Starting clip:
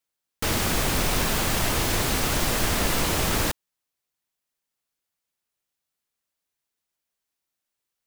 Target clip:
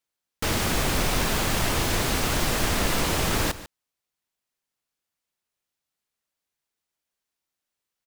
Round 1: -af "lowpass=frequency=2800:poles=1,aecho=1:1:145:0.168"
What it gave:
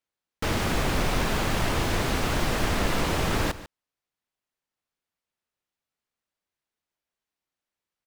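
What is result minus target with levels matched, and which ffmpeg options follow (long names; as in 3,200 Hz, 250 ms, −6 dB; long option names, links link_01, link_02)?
8,000 Hz band −5.0 dB
-af "lowpass=frequency=10000:poles=1,aecho=1:1:145:0.168"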